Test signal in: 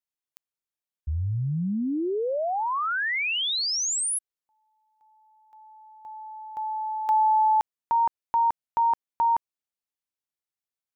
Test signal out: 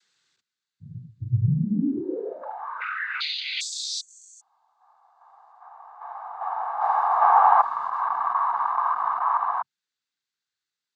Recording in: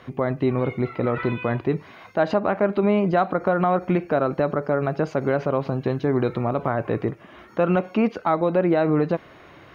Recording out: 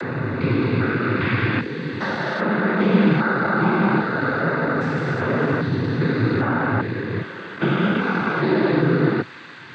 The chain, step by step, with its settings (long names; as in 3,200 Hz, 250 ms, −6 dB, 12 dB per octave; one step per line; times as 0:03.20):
spectrum averaged block by block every 400 ms
cochlear-implant simulation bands 16
graphic EQ with 15 bands 630 Hz −10 dB, 1,600 Hz +9 dB, 4,000 Hz +9 dB
level +7 dB